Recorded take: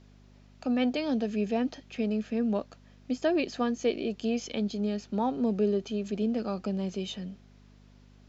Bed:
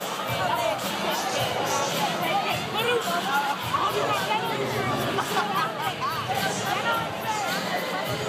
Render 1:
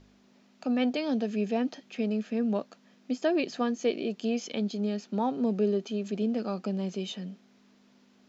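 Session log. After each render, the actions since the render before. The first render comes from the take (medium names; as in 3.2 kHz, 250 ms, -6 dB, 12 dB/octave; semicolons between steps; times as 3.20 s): de-hum 50 Hz, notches 3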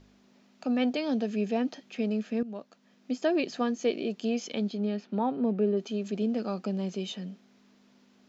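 2.43–3.18 s: fade in linear, from -15 dB; 4.69–5.76 s: low-pass 4.4 kHz -> 2.2 kHz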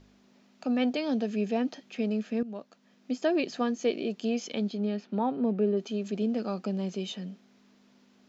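no audible change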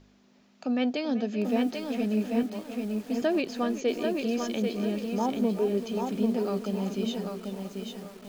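tape echo 385 ms, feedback 70%, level -12 dB, low-pass 2.9 kHz; bit-crushed delay 791 ms, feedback 35%, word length 8-bit, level -4 dB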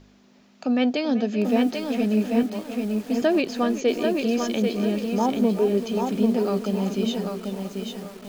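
trim +5.5 dB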